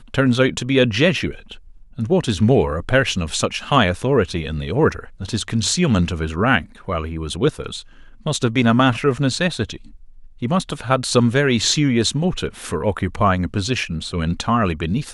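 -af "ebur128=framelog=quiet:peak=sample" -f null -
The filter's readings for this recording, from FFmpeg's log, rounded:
Integrated loudness:
  I:         -19.3 LUFS
  Threshold: -29.7 LUFS
Loudness range:
  LRA:         2.1 LU
  Threshold: -39.7 LUFS
  LRA low:   -20.8 LUFS
  LRA high:  -18.7 LUFS
Sample peak:
  Peak:       -1.6 dBFS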